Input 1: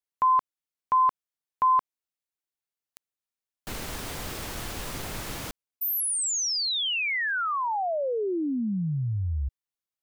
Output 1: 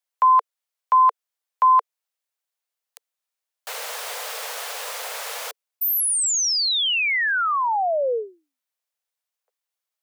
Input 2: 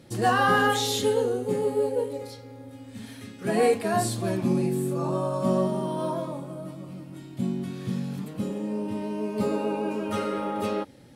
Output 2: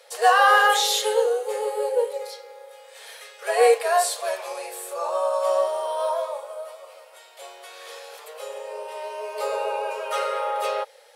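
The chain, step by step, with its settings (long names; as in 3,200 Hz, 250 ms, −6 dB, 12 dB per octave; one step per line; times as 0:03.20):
Butterworth high-pass 450 Hz 96 dB per octave
level +6 dB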